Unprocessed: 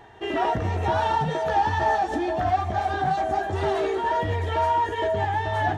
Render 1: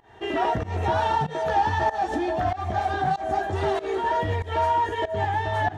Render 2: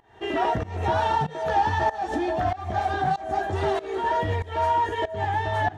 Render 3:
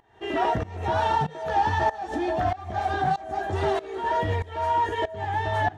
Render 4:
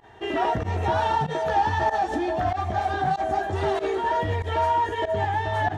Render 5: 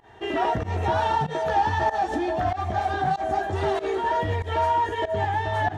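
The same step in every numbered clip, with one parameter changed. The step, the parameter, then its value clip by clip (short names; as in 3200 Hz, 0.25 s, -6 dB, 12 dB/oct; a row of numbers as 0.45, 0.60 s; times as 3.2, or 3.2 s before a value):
pump, release: 173, 296, 492, 77, 116 ms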